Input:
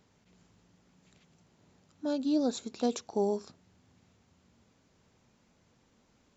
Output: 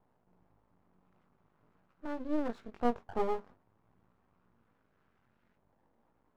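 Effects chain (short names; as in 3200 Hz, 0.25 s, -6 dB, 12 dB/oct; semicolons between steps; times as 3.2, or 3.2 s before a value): LFO low-pass saw up 0.36 Hz 810–1700 Hz; chorus 0.47 Hz, delay 16 ms, depth 5.9 ms; half-wave rectifier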